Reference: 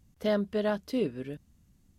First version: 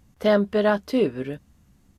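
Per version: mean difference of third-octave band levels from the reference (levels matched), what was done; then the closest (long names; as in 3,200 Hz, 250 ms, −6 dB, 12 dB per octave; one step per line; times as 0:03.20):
2.0 dB: parametric band 1,000 Hz +7 dB 2.8 octaves
double-tracking delay 15 ms −13 dB
downsampling to 32,000 Hz
level +4.5 dB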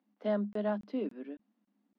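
6.0 dB: Chebyshev high-pass with heavy ripple 200 Hz, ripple 6 dB
high-frequency loss of the air 280 metres
regular buffer underruns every 0.28 s, samples 1,024, zero, from 0:00.53
level −1 dB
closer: first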